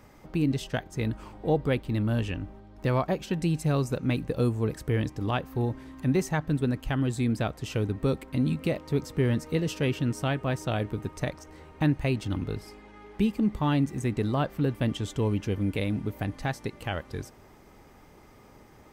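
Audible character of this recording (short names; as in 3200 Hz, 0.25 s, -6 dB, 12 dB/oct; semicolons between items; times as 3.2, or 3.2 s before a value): noise floor -54 dBFS; spectral tilt -7.0 dB/oct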